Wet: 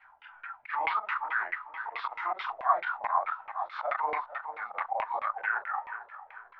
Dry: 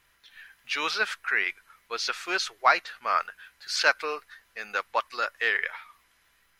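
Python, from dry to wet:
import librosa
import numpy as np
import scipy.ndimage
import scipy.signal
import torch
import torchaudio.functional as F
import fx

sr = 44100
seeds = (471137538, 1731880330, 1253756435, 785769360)

p1 = fx.frame_reverse(x, sr, frame_ms=92.0)
p2 = fx.auto_swell(p1, sr, attack_ms=190.0)
p3 = fx.low_shelf_res(p2, sr, hz=630.0, db=-11.0, q=3.0)
p4 = fx.hum_notches(p3, sr, base_hz=60, count=4)
p5 = p4 + fx.echo_feedback(p4, sr, ms=447, feedback_pct=46, wet_db=-15.0, dry=0)
p6 = fx.formant_shift(p5, sr, semitones=-3)
p7 = fx.filter_lfo_lowpass(p6, sr, shape='saw_down', hz=4.6, low_hz=470.0, high_hz=2400.0, q=3.7)
p8 = fx.lowpass(p7, sr, hz=4000.0, slope=6)
p9 = fx.over_compress(p8, sr, threshold_db=-35.0, ratio=-1.0)
p10 = p8 + (p9 * 10.0 ** (1.0 / 20.0))
y = p10 * 10.0 ** (-4.0 / 20.0)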